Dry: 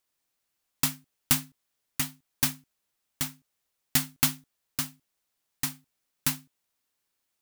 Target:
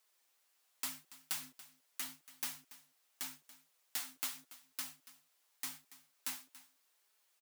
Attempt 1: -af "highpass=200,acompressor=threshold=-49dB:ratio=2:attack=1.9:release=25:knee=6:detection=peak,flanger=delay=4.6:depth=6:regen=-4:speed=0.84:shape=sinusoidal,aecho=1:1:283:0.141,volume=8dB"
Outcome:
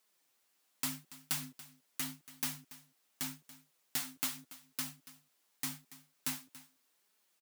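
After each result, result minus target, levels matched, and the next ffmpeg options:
250 Hz band +9.5 dB; compressor: peak gain reduction -3.5 dB
-af "highpass=480,acompressor=threshold=-49dB:ratio=2:attack=1.9:release=25:knee=6:detection=peak,flanger=delay=4.6:depth=6:regen=-4:speed=0.84:shape=sinusoidal,aecho=1:1:283:0.141,volume=8dB"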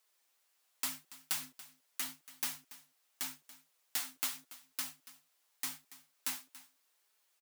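compressor: peak gain reduction -3.5 dB
-af "highpass=480,acompressor=threshold=-56dB:ratio=2:attack=1.9:release=25:knee=6:detection=peak,flanger=delay=4.6:depth=6:regen=-4:speed=0.84:shape=sinusoidal,aecho=1:1:283:0.141,volume=8dB"

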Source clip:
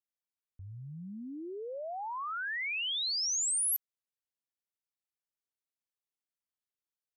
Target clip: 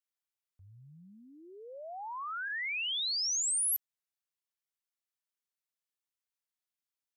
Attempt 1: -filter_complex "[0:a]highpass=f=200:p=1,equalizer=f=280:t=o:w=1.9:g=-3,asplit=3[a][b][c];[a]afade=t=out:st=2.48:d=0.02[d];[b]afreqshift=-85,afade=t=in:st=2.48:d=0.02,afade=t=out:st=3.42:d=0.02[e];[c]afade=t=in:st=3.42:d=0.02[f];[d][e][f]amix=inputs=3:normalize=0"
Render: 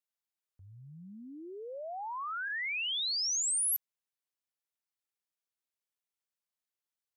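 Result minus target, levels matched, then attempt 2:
250 Hz band +8.0 dB
-filter_complex "[0:a]highpass=f=200:p=1,equalizer=f=280:t=o:w=1.9:g=-11.5,asplit=3[a][b][c];[a]afade=t=out:st=2.48:d=0.02[d];[b]afreqshift=-85,afade=t=in:st=2.48:d=0.02,afade=t=out:st=3.42:d=0.02[e];[c]afade=t=in:st=3.42:d=0.02[f];[d][e][f]amix=inputs=3:normalize=0"

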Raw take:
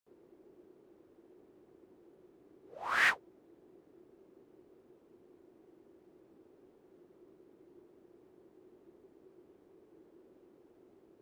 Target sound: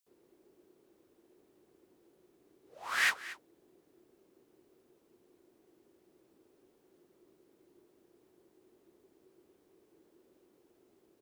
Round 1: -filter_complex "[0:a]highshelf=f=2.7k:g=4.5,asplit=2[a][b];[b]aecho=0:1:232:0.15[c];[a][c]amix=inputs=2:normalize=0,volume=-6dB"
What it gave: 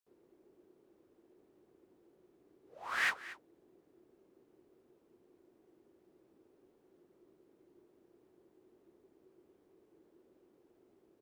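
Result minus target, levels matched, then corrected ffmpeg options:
4000 Hz band -2.5 dB
-filter_complex "[0:a]highshelf=f=2.7k:g=14.5,asplit=2[a][b];[b]aecho=0:1:232:0.15[c];[a][c]amix=inputs=2:normalize=0,volume=-6dB"

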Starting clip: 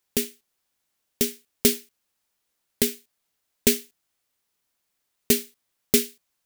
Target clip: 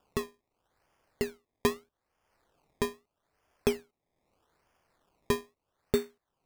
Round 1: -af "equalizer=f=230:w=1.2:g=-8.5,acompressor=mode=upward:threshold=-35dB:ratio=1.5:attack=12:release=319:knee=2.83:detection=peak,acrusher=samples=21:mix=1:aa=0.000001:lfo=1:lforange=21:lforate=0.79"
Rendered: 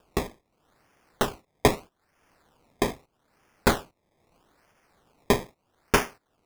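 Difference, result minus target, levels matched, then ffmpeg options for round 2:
1000 Hz band +5.0 dB
-af "lowpass=1.3k,equalizer=f=230:w=1.2:g=-8.5,acompressor=mode=upward:threshold=-35dB:ratio=1.5:attack=12:release=319:knee=2.83:detection=peak,acrusher=samples=21:mix=1:aa=0.000001:lfo=1:lforange=21:lforate=0.79"

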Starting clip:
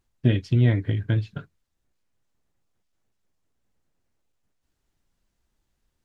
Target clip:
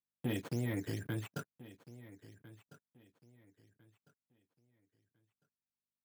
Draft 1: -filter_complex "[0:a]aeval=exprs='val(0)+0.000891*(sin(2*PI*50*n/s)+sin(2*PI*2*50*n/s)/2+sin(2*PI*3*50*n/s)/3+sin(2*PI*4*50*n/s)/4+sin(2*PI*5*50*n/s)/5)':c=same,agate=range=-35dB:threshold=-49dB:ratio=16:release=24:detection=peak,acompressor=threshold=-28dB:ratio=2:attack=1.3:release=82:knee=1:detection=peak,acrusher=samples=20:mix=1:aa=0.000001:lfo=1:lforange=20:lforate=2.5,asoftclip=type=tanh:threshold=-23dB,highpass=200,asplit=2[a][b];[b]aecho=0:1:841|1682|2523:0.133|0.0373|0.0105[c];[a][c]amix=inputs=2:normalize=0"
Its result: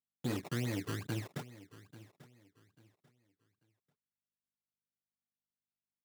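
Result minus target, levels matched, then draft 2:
echo 0.511 s early; decimation with a swept rate: distortion +9 dB
-filter_complex "[0:a]aeval=exprs='val(0)+0.000891*(sin(2*PI*50*n/s)+sin(2*PI*2*50*n/s)/2+sin(2*PI*3*50*n/s)/3+sin(2*PI*4*50*n/s)/4+sin(2*PI*5*50*n/s)/5)':c=same,agate=range=-35dB:threshold=-49dB:ratio=16:release=24:detection=peak,acompressor=threshold=-28dB:ratio=2:attack=1.3:release=82:knee=1:detection=peak,acrusher=samples=6:mix=1:aa=0.000001:lfo=1:lforange=6:lforate=2.5,asoftclip=type=tanh:threshold=-23dB,highpass=200,asplit=2[a][b];[b]aecho=0:1:1352|2704|4056:0.133|0.0373|0.0105[c];[a][c]amix=inputs=2:normalize=0"

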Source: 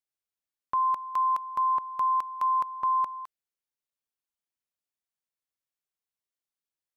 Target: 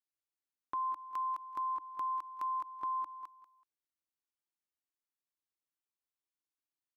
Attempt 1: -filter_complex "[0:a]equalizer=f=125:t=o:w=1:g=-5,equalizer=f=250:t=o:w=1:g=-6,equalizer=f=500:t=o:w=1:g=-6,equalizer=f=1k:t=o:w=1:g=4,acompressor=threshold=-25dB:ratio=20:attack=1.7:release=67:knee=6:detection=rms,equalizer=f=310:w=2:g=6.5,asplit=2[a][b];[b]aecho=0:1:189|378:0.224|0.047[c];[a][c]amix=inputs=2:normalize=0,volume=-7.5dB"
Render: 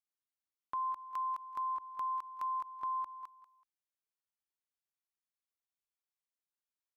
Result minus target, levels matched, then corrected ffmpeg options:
250 Hz band -7.0 dB
-filter_complex "[0:a]equalizer=f=125:t=o:w=1:g=-5,equalizer=f=250:t=o:w=1:g=-6,equalizer=f=500:t=o:w=1:g=-6,equalizer=f=1k:t=o:w=1:g=4,acompressor=threshold=-25dB:ratio=20:attack=1.7:release=67:knee=6:detection=rms,equalizer=f=310:w=2:g=16,asplit=2[a][b];[b]aecho=0:1:189|378:0.224|0.047[c];[a][c]amix=inputs=2:normalize=0,volume=-7.5dB"

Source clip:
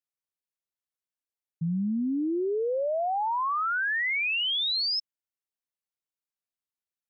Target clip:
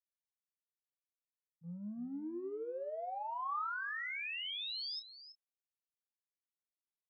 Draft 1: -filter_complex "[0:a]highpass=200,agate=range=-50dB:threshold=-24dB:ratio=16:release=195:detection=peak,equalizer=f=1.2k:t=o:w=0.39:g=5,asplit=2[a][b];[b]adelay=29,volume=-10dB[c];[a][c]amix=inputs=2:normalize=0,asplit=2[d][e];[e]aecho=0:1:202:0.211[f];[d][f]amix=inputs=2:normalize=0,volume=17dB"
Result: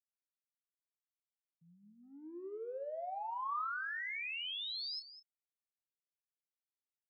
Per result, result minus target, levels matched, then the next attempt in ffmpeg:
125 Hz band -18.5 dB; echo 0.125 s early
-filter_complex "[0:a]highpass=90,agate=range=-50dB:threshold=-24dB:ratio=16:release=195:detection=peak,equalizer=f=1.2k:t=o:w=0.39:g=5,asplit=2[a][b];[b]adelay=29,volume=-10dB[c];[a][c]amix=inputs=2:normalize=0,asplit=2[d][e];[e]aecho=0:1:202:0.211[f];[d][f]amix=inputs=2:normalize=0,volume=17dB"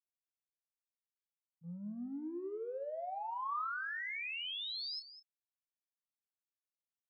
echo 0.125 s early
-filter_complex "[0:a]highpass=90,agate=range=-50dB:threshold=-24dB:ratio=16:release=195:detection=peak,equalizer=f=1.2k:t=o:w=0.39:g=5,asplit=2[a][b];[b]adelay=29,volume=-10dB[c];[a][c]amix=inputs=2:normalize=0,asplit=2[d][e];[e]aecho=0:1:327:0.211[f];[d][f]amix=inputs=2:normalize=0,volume=17dB"

